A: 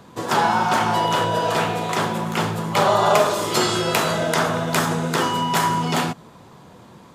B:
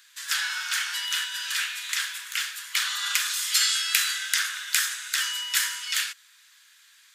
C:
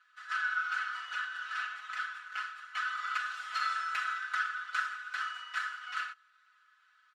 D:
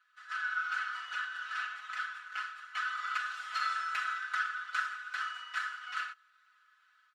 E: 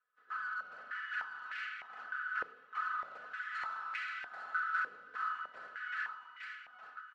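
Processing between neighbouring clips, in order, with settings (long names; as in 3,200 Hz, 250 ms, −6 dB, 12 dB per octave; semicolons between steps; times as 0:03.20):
elliptic high-pass filter 1,600 Hz, stop band 70 dB; high-shelf EQ 4,500 Hz +7 dB; level −1 dB
lower of the sound and its delayed copy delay 4.7 ms; four-pole ladder band-pass 1,400 Hz, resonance 80%; comb filter 4 ms, depth 89%
automatic gain control gain up to 4 dB; level −4.5 dB
tube saturation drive 36 dB, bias 0.3; repeating echo 864 ms, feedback 32%, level −4.5 dB; band-pass on a step sequencer 3.3 Hz 480–2,200 Hz; level +7 dB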